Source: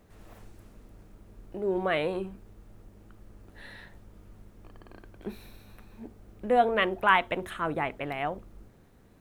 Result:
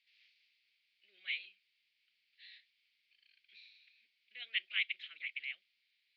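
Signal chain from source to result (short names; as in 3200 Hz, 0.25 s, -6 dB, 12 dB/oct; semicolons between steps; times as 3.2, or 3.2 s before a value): elliptic band-pass 2200–4700 Hz, stop band 50 dB; time stretch by phase-locked vocoder 0.67×; gain +1 dB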